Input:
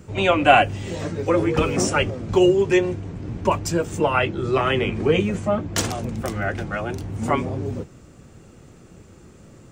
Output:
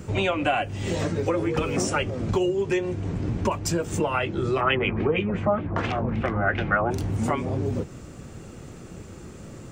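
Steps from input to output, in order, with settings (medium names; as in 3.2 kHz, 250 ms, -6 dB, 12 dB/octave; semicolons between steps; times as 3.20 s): compression 5:1, threshold -28 dBFS, peak gain reduction 17.5 dB; 4.60–6.90 s: LFO low-pass sine 7.9 Hz -> 1.8 Hz 950–2900 Hz; trim +5.5 dB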